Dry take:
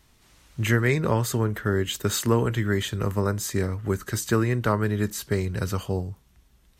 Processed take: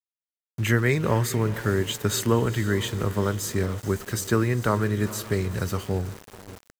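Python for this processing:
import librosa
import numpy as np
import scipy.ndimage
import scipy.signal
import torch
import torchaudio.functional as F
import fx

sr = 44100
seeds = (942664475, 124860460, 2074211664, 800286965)

y = fx.echo_diffused(x, sr, ms=454, feedback_pct=50, wet_db=-14.5)
y = np.where(np.abs(y) >= 10.0 ** (-37.0 / 20.0), y, 0.0)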